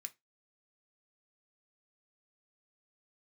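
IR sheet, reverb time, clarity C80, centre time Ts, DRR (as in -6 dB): 0.20 s, 32.5 dB, 3 ms, 7.0 dB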